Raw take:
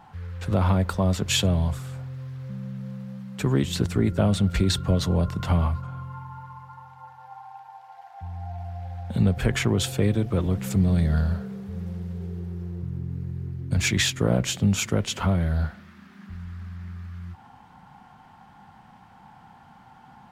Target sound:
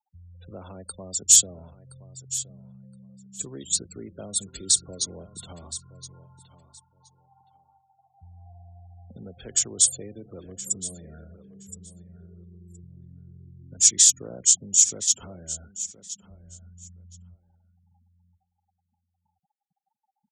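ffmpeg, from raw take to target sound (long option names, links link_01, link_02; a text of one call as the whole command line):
ffmpeg -i in.wav -filter_complex "[0:a]afftfilt=real='re*gte(hypot(re,im),0.0282)':imag='im*gte(hypot(re,im),0.0282)':win_size=1024:overlap=0.75,equalizer=frequency=1000:width_type=o:width=1:gain=-9,equalizer=frequency=2000:width_type=o:width=1:gain=-4,equalizer=frequency=4000:width_type=o:width=1:gain=-7,equalizer=frequency=8000:width_type=o:width=1:gain=6,acrossover=split=280|5100[link_01][link_02][link_03];[link_01]acompressor=threshold=-34dB:ratio=10[link_04];[link_04][link_02][link_03]amix=inputs=3:normalize=0,aecho=1:1:1020|2040:0.178|0.0285,aexciter=amount=15.8:drive=1.8:freq=3500,volume=-11dB" out.wav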